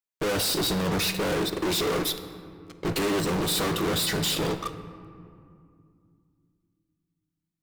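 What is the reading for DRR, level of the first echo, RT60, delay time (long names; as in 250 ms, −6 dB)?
9.5 dB, no echo audible, 2.4 s, no echo audible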